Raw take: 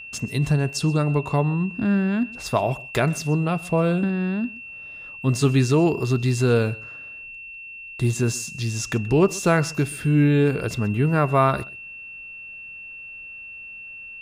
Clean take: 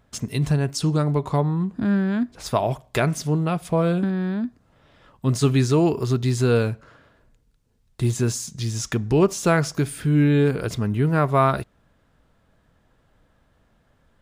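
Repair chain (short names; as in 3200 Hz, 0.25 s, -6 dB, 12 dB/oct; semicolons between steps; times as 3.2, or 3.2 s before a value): notch 2700 Hz, Q 30; inverse comb 0.129 s -22.5 dB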